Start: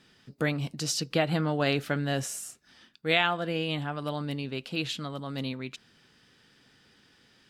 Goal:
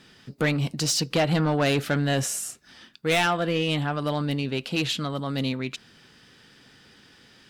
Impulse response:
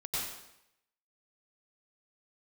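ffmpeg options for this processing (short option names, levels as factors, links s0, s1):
-af "asoftclip=type=tanh:threshold=0.0631,volume=2.37"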